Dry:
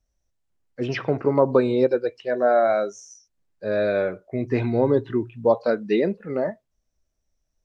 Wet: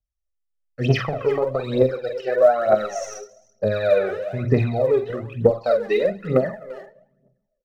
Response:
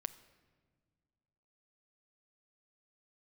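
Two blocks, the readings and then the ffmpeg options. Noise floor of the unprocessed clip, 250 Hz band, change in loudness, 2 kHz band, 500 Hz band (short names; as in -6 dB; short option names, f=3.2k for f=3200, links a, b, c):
-76 dBFS, -2.5 dB, +1.5 dB, +1.0 dB, +2.0 dB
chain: -filter_complex "[0:a]acompressor=threshold=-22dB:ratio=10,agate=range=-25dB:threshold=-57dB:ratio=16:detection=peak,aecho=1:1:1.6:0.51,asplit=2[a][b];[b]adelay=340,highpass=300,lowpass=3.4k,asoftclip=type=hard:threshold=-21.5dB,volume=-12dB[c];[a][c]amix=inputs=2:normalize=0,asplit=2[d][e];[1:a]atrim=start_sample=2205,asetrate=61740,aresample=44100,adelay=46[f];[e][f]afir=irnorm=-1:irlink=0,volume=-0.5dB[g];[d][g]amix=inputs=2:normalize=0,aphaser=in_gain=1:out_gain=1:delay=2.7:decay=0.72:speed=1.1:type=triangular,volume=1.5dB"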